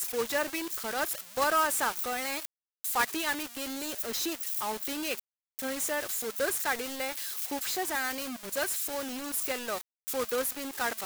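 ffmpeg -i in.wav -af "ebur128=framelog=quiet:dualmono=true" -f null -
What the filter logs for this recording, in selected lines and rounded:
Integrated loudness:
  I:         -28.0 LUFS
  Threshold: -38.1 LUFS
Loudness range:
  LRA:         2.2 LU
  Threshold: -48.3 LUFS
  LRA low:   -29.1 LUFS
  LRA high:  -26.9 LUFS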